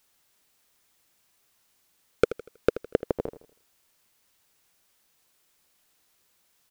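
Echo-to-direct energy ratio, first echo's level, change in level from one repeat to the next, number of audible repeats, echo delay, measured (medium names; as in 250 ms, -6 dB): -13.5 dB, -14.0 dB, -8.5 dB, 3, 80 ms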